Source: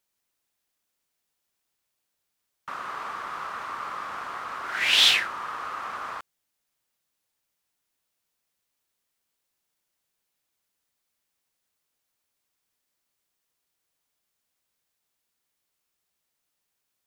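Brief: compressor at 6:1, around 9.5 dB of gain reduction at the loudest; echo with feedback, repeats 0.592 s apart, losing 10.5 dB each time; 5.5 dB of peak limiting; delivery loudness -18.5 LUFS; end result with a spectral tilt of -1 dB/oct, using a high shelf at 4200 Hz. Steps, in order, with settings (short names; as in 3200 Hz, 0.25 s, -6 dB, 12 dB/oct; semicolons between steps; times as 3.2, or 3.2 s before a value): high shelf 4200 Hz -3.5 dB; compressor 6:1, threshold -26 dBFS; limiter -23 dBFS; feedback echo 0.592 s, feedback 30%, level -10.5 dB; gain +15.5 dB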